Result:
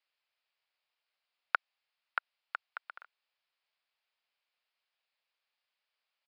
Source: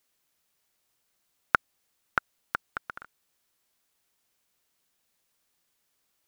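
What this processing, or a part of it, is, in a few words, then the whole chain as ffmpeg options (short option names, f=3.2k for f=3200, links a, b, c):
musical greeting card: -filter_complex "[0:a]aresample=11025,aresample=44100,highpass=f=550:w=0.5412,highpass=f=550:w=1.3066,equalizer=f=2.5k:t=o:w=0.56:g=5,asettb=1/sr,asplit=3[a][b][c];[a]atrim=end=1.554[d];[b]atrim=start=1.55:end=2.91,asetpts=PTS-STARTPTS,afade=t=in:d=0.004:c=qsin,afade=t=out:st=1.356:d=0.004:c=qsin,highpass=490[e];[c]atrim=start=2.906[f];[d][e]acrossfade=d=0.004:c1=hsin:c2=qsin[g];[g][f]acrossfade=d=0.004:c1=qsin:c2=hsin,volume=-7.5dB"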